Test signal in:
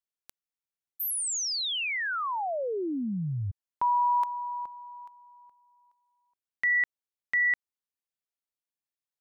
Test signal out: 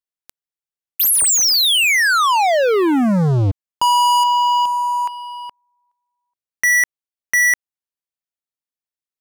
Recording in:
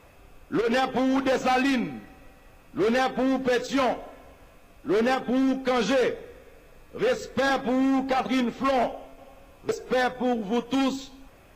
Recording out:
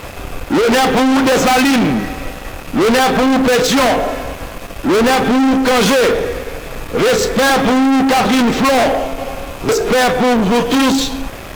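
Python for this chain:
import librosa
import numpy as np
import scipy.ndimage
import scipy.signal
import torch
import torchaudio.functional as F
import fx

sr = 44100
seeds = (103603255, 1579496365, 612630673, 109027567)

y = fx.leveller(x, sr, passes=5)
y = y * 10.0 ** (7.5 / 20.0)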